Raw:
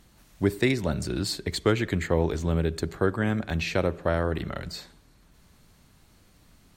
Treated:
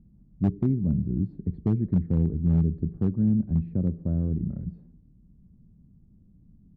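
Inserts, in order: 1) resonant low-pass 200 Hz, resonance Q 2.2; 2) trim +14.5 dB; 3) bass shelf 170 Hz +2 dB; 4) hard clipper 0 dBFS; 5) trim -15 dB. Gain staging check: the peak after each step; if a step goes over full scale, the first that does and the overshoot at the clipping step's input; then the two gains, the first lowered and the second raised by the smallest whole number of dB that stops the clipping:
-11.0 dBFS, +3.5 dBFS, +4.5 dBFS, 0.0 dBFS, -15.0 dBFS; step 2, 4.5 dB; step 2 +9.5 dB, step 5 -10 dB

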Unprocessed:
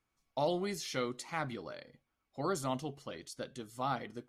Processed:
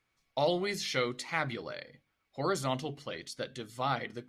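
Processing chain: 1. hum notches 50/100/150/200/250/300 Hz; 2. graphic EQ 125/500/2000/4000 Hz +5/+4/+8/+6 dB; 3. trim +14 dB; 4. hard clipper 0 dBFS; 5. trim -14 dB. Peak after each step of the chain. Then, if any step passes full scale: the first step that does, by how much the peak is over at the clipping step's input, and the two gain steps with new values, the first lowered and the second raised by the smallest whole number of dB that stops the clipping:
-21.0 dBFS, -16.0 dBFS, -2.0 dBFS, -2.0 dBFS, -16.0 dBFS; nothing clips

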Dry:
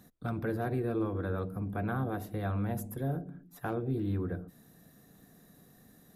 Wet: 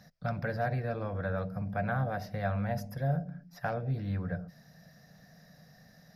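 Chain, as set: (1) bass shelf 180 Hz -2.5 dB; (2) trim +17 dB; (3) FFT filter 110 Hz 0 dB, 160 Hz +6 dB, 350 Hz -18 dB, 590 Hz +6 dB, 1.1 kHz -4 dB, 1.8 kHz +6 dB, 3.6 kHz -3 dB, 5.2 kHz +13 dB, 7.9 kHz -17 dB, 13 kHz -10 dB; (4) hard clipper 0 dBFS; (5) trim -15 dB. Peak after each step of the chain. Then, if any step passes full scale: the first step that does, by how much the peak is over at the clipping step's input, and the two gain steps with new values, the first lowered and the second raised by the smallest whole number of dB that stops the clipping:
-23.0 dBFS, -6.0 dBFS, -4.0 dBFS, -4.0 dBFS, -19.0 dBFS; nothing clips

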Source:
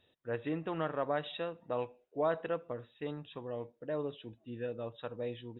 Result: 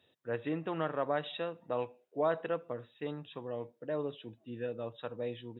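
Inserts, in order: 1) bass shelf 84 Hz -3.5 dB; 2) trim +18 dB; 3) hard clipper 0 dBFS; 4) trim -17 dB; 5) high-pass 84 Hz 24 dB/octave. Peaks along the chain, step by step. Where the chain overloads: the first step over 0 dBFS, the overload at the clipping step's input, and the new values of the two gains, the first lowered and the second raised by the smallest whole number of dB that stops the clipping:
-20.0 dBFS, -2.0 dBFS, -2.0 dBFS, -19.0 dBFS, -19.0 dBFS; nothing clips

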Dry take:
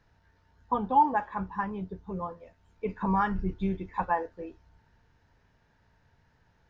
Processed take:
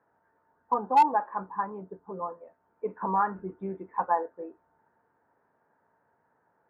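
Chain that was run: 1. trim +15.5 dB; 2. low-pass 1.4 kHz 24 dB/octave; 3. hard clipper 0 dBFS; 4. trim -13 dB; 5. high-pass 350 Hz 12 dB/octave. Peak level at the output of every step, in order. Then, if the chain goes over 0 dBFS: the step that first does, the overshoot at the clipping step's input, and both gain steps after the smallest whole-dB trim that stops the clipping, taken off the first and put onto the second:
+3.5 dBFS, +3.5 dBFS, 0.0 dBFS, -13.0 dBFS, -11.0 dBFS; step 1, 3.5 dB; step 1 +11.5 dB, step 4 -9 dB

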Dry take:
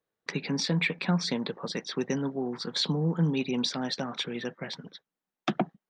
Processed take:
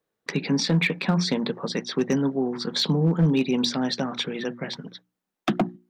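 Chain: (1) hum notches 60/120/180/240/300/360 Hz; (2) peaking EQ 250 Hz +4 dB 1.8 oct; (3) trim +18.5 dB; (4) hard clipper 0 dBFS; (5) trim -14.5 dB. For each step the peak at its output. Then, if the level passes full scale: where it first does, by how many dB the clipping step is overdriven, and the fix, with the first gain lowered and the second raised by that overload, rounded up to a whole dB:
-14.5 dBFS, -13.0 dBFS, +5.5 dBFS, 0.0 dBFS, -14.5 dBFS; step 3, 5.5 dB; step 3 +12.5 dB, step 5 -8.5 dB

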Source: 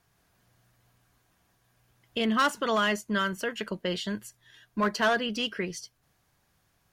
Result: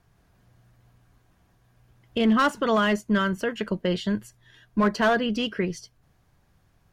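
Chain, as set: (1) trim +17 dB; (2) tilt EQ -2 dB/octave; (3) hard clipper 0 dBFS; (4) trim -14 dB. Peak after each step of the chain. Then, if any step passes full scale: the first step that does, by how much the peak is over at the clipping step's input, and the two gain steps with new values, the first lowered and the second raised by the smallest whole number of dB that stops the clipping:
+0.5 dBFS, +3.0 dBFS, 0.0 dBFS, -14.0 dBFS; step 1, 3.0 dB; step 1 +14 dB, step 4 -11 dB

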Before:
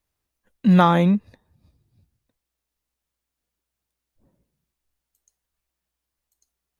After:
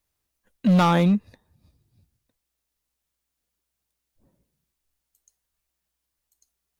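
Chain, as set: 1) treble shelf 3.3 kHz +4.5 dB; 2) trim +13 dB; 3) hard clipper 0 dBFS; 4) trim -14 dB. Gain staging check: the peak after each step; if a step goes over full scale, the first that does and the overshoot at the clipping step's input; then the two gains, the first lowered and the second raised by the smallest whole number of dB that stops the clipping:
-3.5 dBFS, +9.5 dBFS, 0.0 dBFS, -14.0 dBFS; step 2, 9.5 dB; step 2 +3 dB, step 4 -4 dB

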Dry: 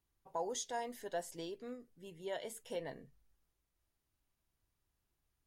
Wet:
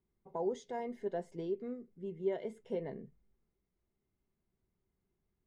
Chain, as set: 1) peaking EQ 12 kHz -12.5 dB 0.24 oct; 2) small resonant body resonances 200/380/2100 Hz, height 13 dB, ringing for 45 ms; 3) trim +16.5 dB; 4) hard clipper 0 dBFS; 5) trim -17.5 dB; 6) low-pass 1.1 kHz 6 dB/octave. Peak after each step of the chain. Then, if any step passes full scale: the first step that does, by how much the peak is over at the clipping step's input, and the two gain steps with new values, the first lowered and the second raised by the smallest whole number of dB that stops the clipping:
-27.5 dBFS, -22.0 dBFS, -5.5 dBFS, -5.5 dBFS, -23.0 dBFS, -23.5 dBFS; nothing clips

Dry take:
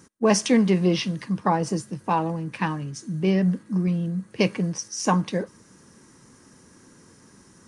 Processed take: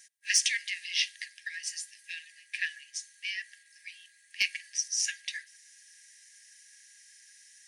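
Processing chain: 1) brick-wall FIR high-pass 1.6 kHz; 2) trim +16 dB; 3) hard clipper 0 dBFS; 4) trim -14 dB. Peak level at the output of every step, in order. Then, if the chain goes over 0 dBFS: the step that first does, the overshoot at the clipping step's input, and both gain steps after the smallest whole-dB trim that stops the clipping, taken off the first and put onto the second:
-12.5 dBFS, +3.5 dBFS, 0.0 dBFS, -14.0 dBFS; step 2, 3.5 dB; step 2 +12 dB, step 4 -10 dB

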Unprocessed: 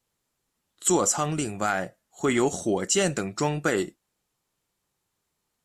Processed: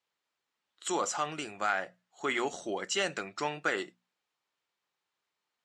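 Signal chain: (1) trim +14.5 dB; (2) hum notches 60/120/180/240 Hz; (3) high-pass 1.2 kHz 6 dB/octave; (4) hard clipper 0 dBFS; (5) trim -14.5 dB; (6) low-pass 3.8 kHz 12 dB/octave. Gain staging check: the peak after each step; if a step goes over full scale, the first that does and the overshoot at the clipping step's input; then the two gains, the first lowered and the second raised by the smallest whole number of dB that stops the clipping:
+5.0 dBFS, +5.0 dBFS, +4.5 dBFS, 0.0 dBFS, -14.5 dBFS, -15.5 dBFS; step 1, 4.5 dB; step 1 +9.5 dB, step 5 -9.5 dB

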